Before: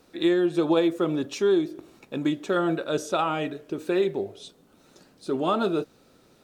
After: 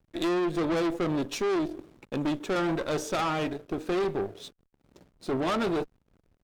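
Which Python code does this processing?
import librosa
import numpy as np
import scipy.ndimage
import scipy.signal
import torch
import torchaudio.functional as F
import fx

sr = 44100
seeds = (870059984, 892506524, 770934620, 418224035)

y = fx.backlash(x, sr, play_db=-45.0)
y = fx.tube_stage(y, sr, drive_db=29.0, bias=0.65)
y = F.gain(torch.from_numpy(y), 4.5).numpy()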